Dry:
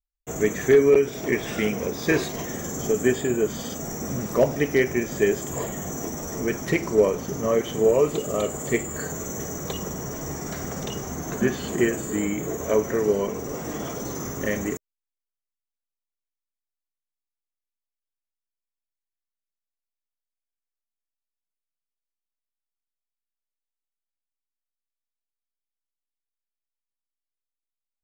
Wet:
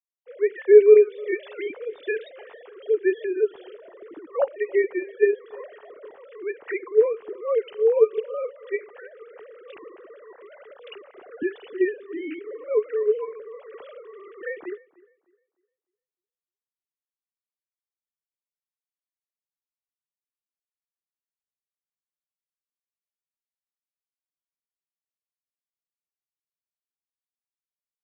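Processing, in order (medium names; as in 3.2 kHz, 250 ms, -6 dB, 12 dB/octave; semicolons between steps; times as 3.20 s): formants replaced by sine waves; tape echo 303 ms, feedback 32%, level -22 dB, low-pass 2.5 kHz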